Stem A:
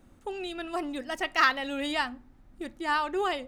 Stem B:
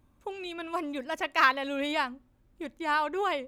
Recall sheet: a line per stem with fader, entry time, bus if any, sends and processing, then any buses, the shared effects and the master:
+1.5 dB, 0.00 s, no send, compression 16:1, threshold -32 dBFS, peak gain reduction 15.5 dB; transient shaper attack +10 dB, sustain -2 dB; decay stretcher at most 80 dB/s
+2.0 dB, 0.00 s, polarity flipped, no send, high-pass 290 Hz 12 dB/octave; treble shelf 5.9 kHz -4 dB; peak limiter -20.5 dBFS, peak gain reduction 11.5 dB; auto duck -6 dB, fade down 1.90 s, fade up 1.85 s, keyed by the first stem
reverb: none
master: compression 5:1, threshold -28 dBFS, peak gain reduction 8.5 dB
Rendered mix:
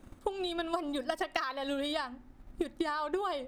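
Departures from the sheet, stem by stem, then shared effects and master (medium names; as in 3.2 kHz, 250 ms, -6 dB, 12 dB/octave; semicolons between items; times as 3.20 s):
stem A: missing decay stretcher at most 80 dB/s; stem B: polarity flipped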